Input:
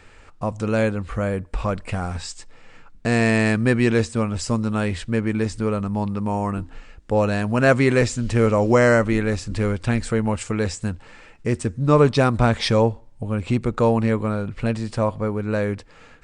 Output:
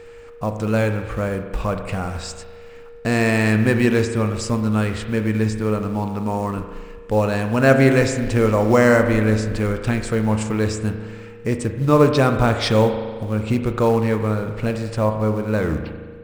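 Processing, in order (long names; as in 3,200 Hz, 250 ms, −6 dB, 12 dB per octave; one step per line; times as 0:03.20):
turntable brake at the end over 0.68 s
in parallel at −6 dB: floating-point word with a short mantissa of 2 bits
on the sum: steady tone 470 Hz −35 dBFS
spring reverb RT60 1.6 s, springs 37 ms, chirp 55 ms, DRR 6.5 dB
level −3 dB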